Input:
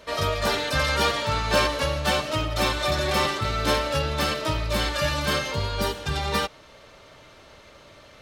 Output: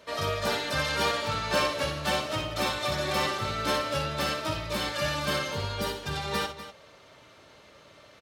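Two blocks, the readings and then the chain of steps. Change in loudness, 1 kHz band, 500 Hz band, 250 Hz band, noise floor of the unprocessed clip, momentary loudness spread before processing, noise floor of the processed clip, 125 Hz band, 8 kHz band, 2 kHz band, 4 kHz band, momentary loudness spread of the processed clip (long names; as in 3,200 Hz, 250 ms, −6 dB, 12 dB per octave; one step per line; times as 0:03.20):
−4.5 dB, −4.0 dB, −4.5 dB, −4.5 dB, −50 dBFS, 5 LU, −55 dBFS, −6.5 dB, −4.0 dB, −4.0 dB, −4.0 dB, 5 LU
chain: high-pass filter 83 Hz 12 dB per octave
multi-tap delay 60/246 ms −7.5/−13 dB
level −5 dB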